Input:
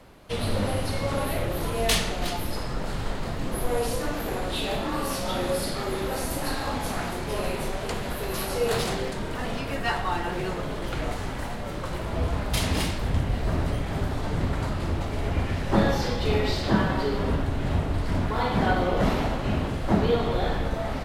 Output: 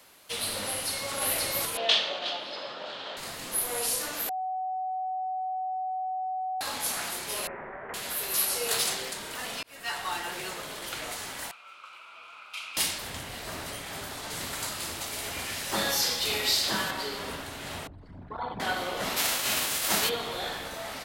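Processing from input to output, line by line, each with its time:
0.68–1.12 echo throw 0.53 s, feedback 55%, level 0 dB
1.77–3.17 speaker cabinet 250–4000 Hz, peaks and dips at 600 Hz +8 dB, 2100 Hz -6 dB, 3300 Hz +5 dB
4.29–6.61 bleep 749 Hz -22 dBFS
7.47–7.94 elliptic low-pass 1900 Hz, stop band 60 dB
9.63–10.07 fade in
11.51–12.77 double band-pass 1800 Hz, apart 0.89 oct
14.3–16.91 high shelf 4300 Hz +8.5 dB
17.87–18.6 formant sharpening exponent 2
19.16–20.08 spectral whitening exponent 0.6
whole clip: tilt +4.5 dB/oct; gain -5 dB

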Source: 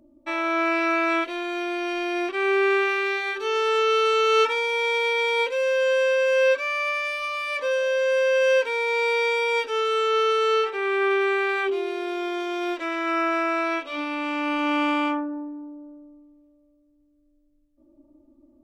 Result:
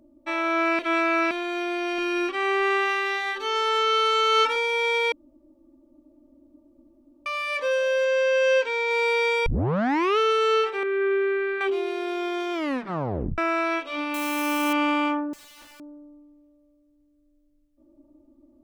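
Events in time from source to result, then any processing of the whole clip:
0.79–1.31 reverse
1.98–4.56 comb 3.6 ms, depth 62%
5.12–7.26 room tone
8.05–8.91 elliptic low-pass 7600 Hz
9.46 tape start 0.72 s
10.83–11.61 EQ curve 510 Hz 0 dB, 910 Hz -22 dB, 1400 Hz -2 dB, 9800 Hz -26 dB
12.53 tape stop 0.85 s
14.14–14.73 switching spikes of -25.5 dBFS
15.33–15.8 wrapped overs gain 44.5 dB

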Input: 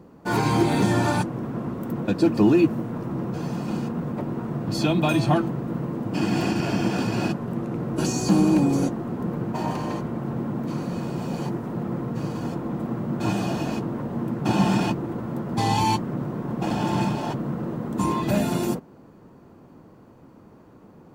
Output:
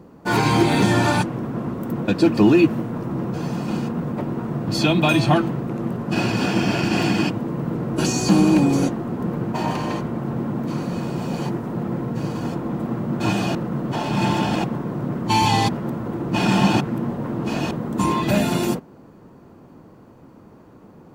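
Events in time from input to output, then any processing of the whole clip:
5.69–7.75 reverse
11.88–12.28 notch 1200 Hz
13.55–17.71 reverse
whole clip: dynamic EQ 2800 Hz, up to +5 dB, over -42 dBFS, Q 0.75; gain +3 dB

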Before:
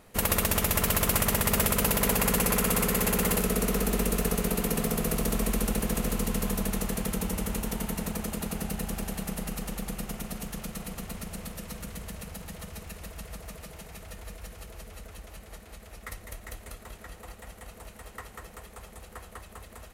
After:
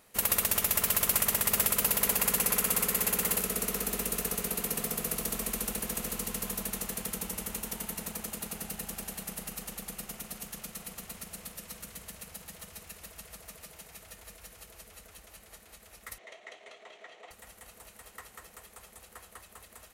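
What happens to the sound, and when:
16.18–17.31 speaker cabinet 360–5600 Hz, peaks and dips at 400 Hz +8 dB, 660 Hz +10 dB, 1500 Hz -4 dB, 2100 Hz +6 dB, 3200 Hz +5 dB, 4900 Hz -8 dB
whole clip: tilt +2 dB/oct; gain -6 dB

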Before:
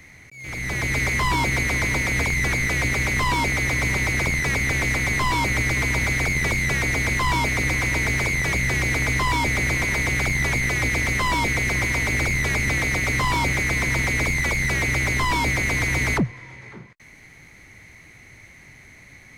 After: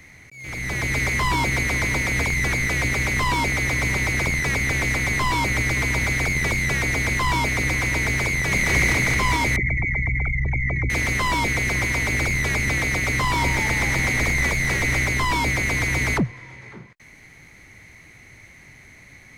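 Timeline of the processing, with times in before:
8.29–8.7 echo throw 0.22 s, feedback 75%, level 0 dB
9.56–10.9 formant sharpening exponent 3
13.15–15.05 frequency-shifting echo 0.228 s, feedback 55%, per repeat -63 Hz, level -8 dB

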